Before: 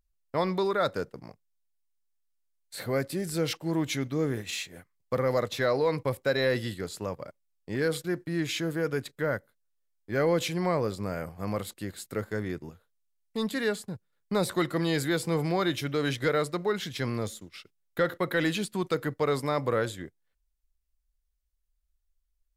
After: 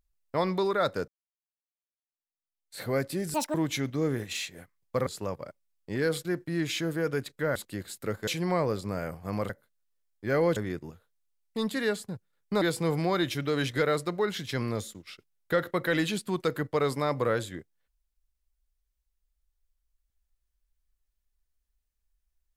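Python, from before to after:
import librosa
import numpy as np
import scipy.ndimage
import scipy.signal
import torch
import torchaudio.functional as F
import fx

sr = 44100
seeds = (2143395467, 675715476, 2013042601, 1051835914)

y = fx.edit(x, sr, fx.fade_in_span(start_s=1.08, length_s=1.74, curve='exp'),
    fx.speed_span(start_s=3.34, length_s=0.38, speed=1.86),
    fx.cut(start_s=5.24, length_s=1.62),
    fx.swap(start_s=9.35, length_s=1.07, other_s=11.64, other_length_s=0.72),
    fx.cut(start_s=14.41, length_s=0.67), tone=tone)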